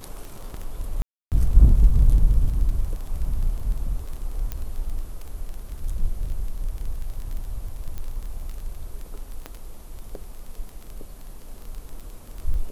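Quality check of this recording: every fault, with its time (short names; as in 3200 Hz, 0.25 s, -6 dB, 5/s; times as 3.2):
crackle 20/s -30 dBFS
1.02–1.32 gap 0.298 s
4.52 pop -15 dBFS
7.98 pop -20 dBFS
9.46 pop -18 dBFS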